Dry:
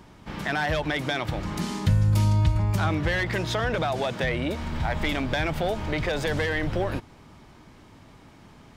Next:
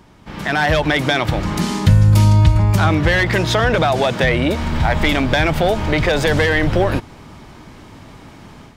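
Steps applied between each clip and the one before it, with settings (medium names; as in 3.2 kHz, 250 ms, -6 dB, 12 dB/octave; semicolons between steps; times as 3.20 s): level rider gain up to 9 dB; trim +2 dB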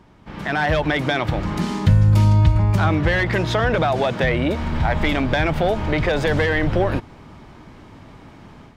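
treble shelf 4.5 kHz -10 dB; trim -3 dB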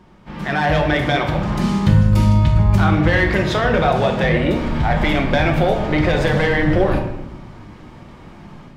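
simulated room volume 310 m³, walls mixed, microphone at 0.96 m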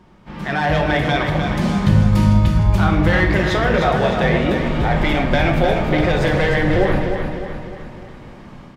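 feedback delay 304 ms, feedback 50%, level -6.5 dB; trim -1 dB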